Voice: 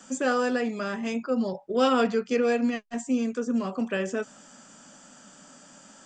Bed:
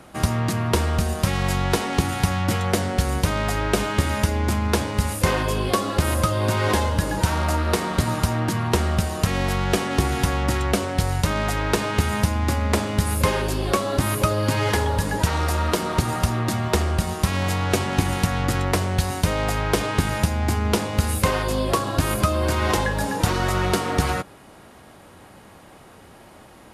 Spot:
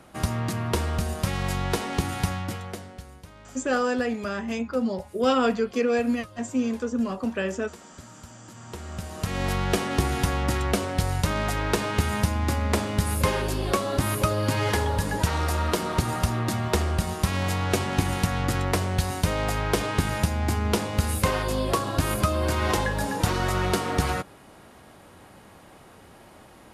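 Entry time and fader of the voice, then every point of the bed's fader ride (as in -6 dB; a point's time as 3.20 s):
3.45 s, +0.5 dB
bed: 2.27 s -5 dB
3.21 s -25 dB
8.42 s -25 dB
9.48 s -3 dB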